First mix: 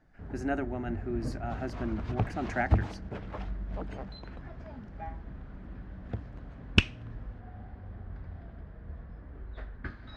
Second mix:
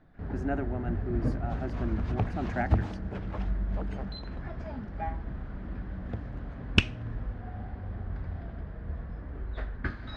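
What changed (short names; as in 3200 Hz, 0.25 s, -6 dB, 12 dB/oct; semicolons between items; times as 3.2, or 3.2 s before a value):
speech: add high shelf 2600 Hz -11 dB; first sound +6.5 dB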